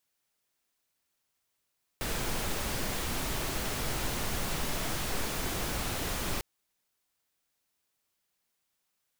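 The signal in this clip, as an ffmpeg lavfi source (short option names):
-f lavfi -i "anoisesrc=c=pink:a=0.122:d=4.4:r=44100:seed=1"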